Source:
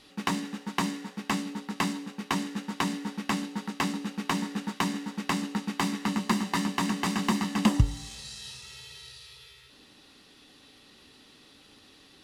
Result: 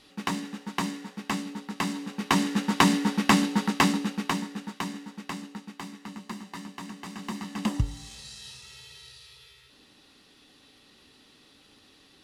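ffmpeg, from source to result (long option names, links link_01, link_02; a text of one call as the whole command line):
ffmpeg -i in.wav -af "volume=19dB,afade=type=in:start_time=1.84:duration=0.9:silence=0.316228,afade=type=out:start_time=3.62:duration=0.84:silence=0.251189,afade=type=out:start_time=4.46:duration=1.41:silence=0.354813,afade=type=in:start_time=7.09:duration=1.05:silence=0.316228" out.wav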